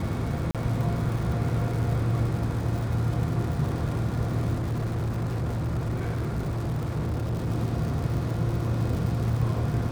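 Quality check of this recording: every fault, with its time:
surface crackle 150 per second −33 dBFS
0:00.51–0:00.55: drop-out 37 ms
0:04.53–0:07.49: clipping −24.5 dBFS

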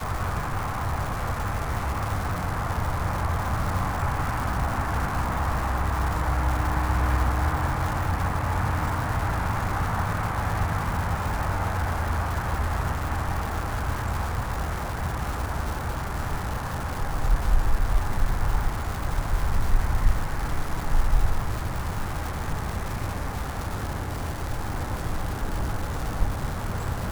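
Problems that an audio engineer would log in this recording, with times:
surface crackle 540 per second −29 dBFS

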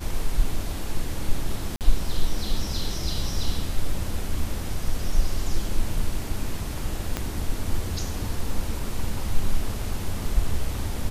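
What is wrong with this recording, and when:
0:01.76–0:01.81: drop-out 48 ms
0:07.17: click −11 dBFS

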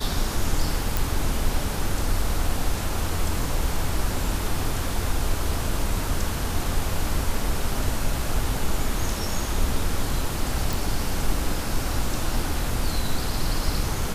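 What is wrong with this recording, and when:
0:00.97: click
0:10.73: click

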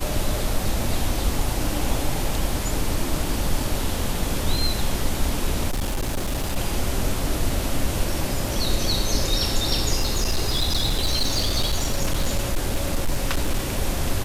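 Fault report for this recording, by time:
0:05.70–0:06.57: clipping −20.5 dBFS
0:09.98–0:13.70: clipping −16.5 dBFS

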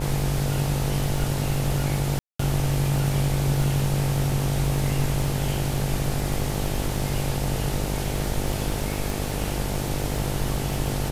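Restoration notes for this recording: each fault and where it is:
mains buzz 50 Hz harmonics 18 −29 dBFS
surface crackle 64 per second −30 dBFS
0:02.19–0:02.39: drop-out 204 ms
0:09.10: click

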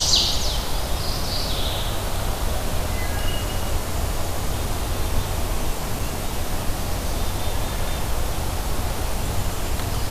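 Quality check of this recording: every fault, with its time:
0:05.99: drop-out 3.9 ms

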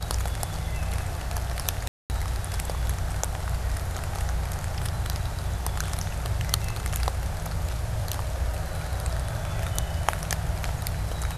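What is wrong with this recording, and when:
0:01.88–0:02.10: drop-out 219 ms

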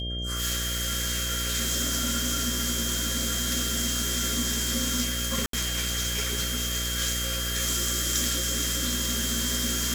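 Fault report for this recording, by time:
mains buzz 60 Hz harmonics 11 −33 dBFS
whistle 3,200 Hz −33 dBFS
0:05.46–0:05.53: drop-out 73 ms

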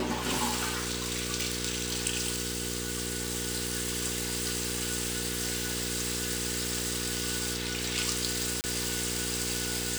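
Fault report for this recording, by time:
mains hum 60 Hz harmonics 8 −37 dBFS
0:08.61–0:08.64: drop-out 29 ms

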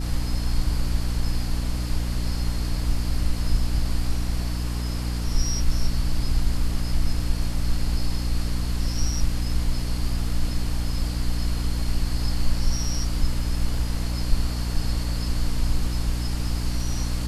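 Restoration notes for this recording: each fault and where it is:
mains hum 60 Hz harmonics 5 −27 dBFS

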